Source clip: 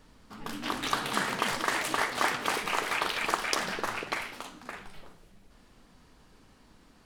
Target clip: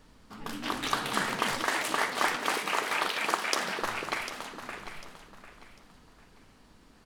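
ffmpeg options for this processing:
-filter_complex "[0:a]asettb=1/sr,asplit=3[s0][s1][s2];[s0]atrim=end=1.664[s3];[s1]atrim=start=1.66:end=3.83,asetpts=PTS-STARTPTS,afade=t=in:d=0.004:c=qsin,afade=t=out:st=2.166:d=0.004:c=qsin,highpass=180[s4];[s2]atrim=start=3.826[s5];[s3][s4]acrossfade=d=0.004:c1=hsin:c2=qsin[s6];[s6][s5]acrossfade=d=0.004:c1=qsin:c2=hsin,aecho=1:1:748|1496|2244:0.251|0.0728|0.0211"

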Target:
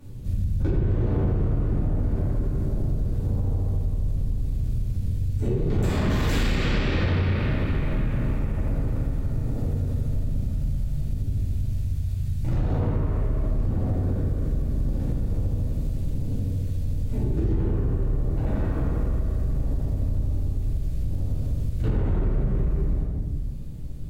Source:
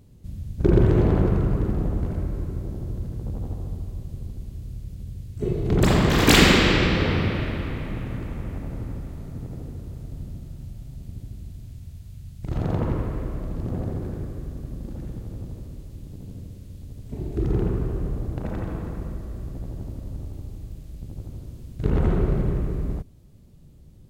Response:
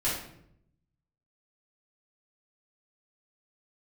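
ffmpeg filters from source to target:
-filter_complex "[0:a]acrossover=split=140[s0][s1];[s1]alimiter=limit=0.237:level=0:latency=1:release=274[s2];[s0][s2]amix=inputs=2:normalize=0[s3];[1:a]atrim=start_sample=2205,asetrate=37485,aresample=44100[s4];[s3][s4]afir=irnorm=-1:irlink=0,acompressor=threshold=0.1:ratio=5,asoftclip=type=tanh:threshold=0.224"

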